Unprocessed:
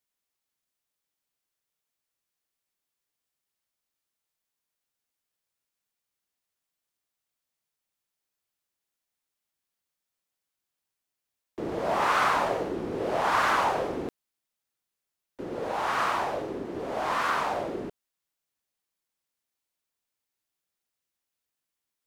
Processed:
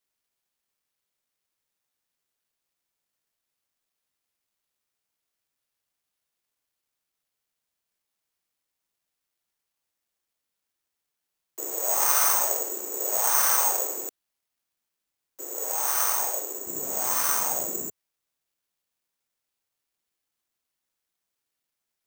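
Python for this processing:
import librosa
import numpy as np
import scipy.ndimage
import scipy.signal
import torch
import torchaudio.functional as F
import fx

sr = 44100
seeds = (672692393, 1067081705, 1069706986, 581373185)

y = fx.highpass(x, sr, hz=fx.steps((0.0, 370.0), (16.67, 82.0)), slope=24)
y = (np.kron(y[::6], np.eye(6)[0]) * 6)[:len(y)]
y = y * librosa.db_to_amplitude(-5.5)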